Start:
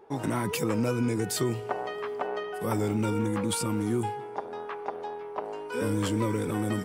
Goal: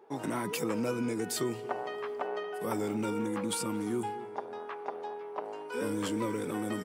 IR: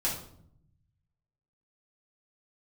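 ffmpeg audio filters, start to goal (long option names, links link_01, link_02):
-filter_complex "[0:a]highpass=180,asplit=2[link_01][link_02];[link_02]adelay=229,lowpass=frequency=1800:poles=1,volume=-17.5dB,asplit=2[link_03][link_04];[link_04]adelay=229,lowpass=frequency=1800:poles=1,volume=0.39,asplit=2[link_05][link_06];[link_06]adelay=229,lowpass=frequency=1800:poles=1,volume=0.39[link_07];[link_03][link_05][link_07]amix=inputs=3:normalize=0[link_08];[link_01][link_08]amix=inputs=2:normalize=0,volume=-3.5dB"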